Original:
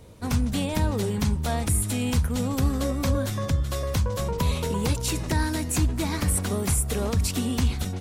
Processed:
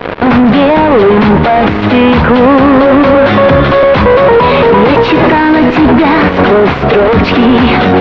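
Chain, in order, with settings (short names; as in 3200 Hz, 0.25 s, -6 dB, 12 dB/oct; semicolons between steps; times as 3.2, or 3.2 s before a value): HPF 340 Hz 12 dB/oct; in parallel at -3 dB: fuzz box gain 53 dB, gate -50 dBFS; on the sum: Gaussian blur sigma 3.4 samples; maximiser +21.5 dB; gain -1 dB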